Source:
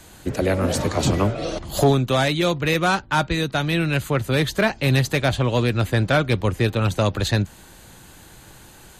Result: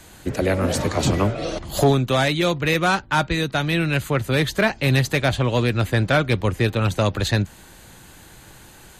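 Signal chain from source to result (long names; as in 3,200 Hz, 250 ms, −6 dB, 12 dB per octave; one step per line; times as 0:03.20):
parametric band 2,000 Hz +2 dB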